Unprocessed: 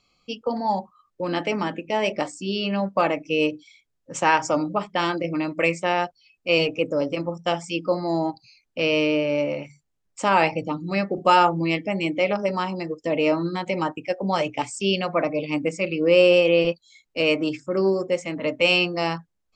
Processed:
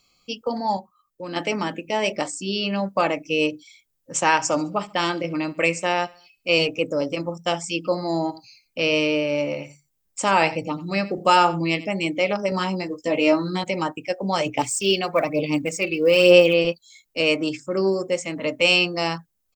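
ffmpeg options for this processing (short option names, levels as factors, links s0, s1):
-filter_complex "[0:a]asettb=1/sr,asplit=3[s0][s1][s2];[s0]atrim=end=4.264[s3];[s1]atrim=start=4.26:end=6.56,asetpts=PTS-STARTPTS,afade=t=in:d=0.004:c=qsin,afade=t=out:st=2.296:d=0.004:c=qsin,aecho=1:1:70|140|210:0.0794|0.0357|0.0161,atrim=end_sample=101430[s4];[s2]atrim=start=6.556[s5];[s3][s4]acrossfade=d=0.004:c1=hsin:c2=qsin[s6];[s6][s5]acrossfade=d=0.004:c1=qsin:c2=hsin,asplit=3[s7][s8][s9];[s7]afade=t=out:st=7.84:d=0.02[s10];[s8]aecho=1:1:90:0.133,afade=t=in:st=7.84:d=0.02,afade=t=out:st=11.92:d=0.02[s11];[s9]afade=t=in:st=11.92:d=0.02[s12];[s10][s11][s12]amix=inputs=3:normalize=0,asettb=1/sr,asplit=3[s13][s14][s15];[s13]atrim=end=12.504[s16];[s14]atrim=start=12.5:end=13.64,asetpts=PTS-STARTPTS,afade=t=in:d=0.004:c=qsin,afade=t=out:st=1.136:d=0.004:c=qsin,asplit=2[s17][s18];[s18]adelay=16,volume=0.708[s19];[s17][s19]amix=inputs=2:normalize=0,atrim=end_sample=50274[s20];[s15]atrim=start=13.636[s21];[s16][s20]acrossfade=d=0.004:c1=hsin:c2=qsin[s22];[s22][s21]acrossfade=d=0.004:c1=qsin:c2=hsin,asplit=3[s23][s24][s25];[s23]afade=t=out:st=14.45:d=0.02[s26];[s24]aphaser=in_gain=1:out_gain=1:delay=2.7:decay=0.47:speed=1.1:type=sinusoidal,afade=t=in:st=14.45:d=0.02,afade=t=out:st=16.53:d=0.02[s27];[s25]afade=t=in:st=16.53:d=0.02[s28];[s26][s27][s28]amix=inputs=3:normalize=0,asplit=3[s29][s30][s31];[s29]atrim=end=0.772[s32];[s30]atrim=start=0.768:end=1.362,asetpts=PTS-STARTPTS,volume=0.501[s33];[s31]atrim=start=1.358[s34];[s32][s33]acrossfade=d=0.004:c1=hsin:c2=hsin[s35];[s35][s34]acrossfade=d=0.004:c1=hsin:c2=hsin,aemphasis=mode=production:type=50fm"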